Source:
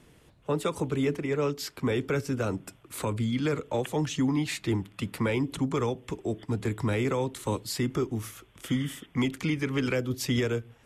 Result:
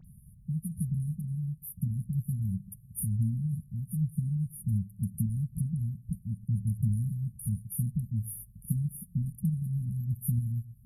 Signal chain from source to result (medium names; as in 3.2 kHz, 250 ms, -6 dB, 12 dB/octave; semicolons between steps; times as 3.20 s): in parallel at +3 dB: compression, threshold -35 dBFS, peak gain reduction 12 dB; on the sum: brick-wall FIR band-stop 220–9300 Hz; phase dispersion highs, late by 47 ms, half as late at 2.4 kHz